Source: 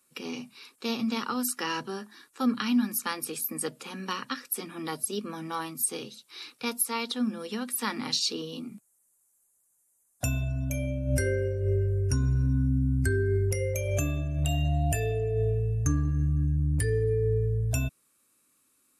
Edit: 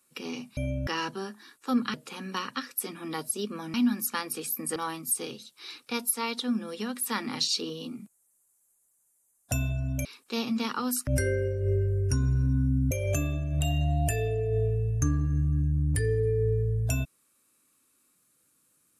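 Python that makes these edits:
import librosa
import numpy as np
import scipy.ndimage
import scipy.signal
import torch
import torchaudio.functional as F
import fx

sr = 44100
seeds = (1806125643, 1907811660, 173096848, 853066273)

y = fx.edit(x, sr, fx.swap(start_s=0.57, length_s=1.02, other_s=10.77, other_length_s=0.3),
    fx.move(start_s=2.66, length_s=1.02, to_s=5.48),
    fx.cut(start_s=12.91, length_s=0.84), tone=tone)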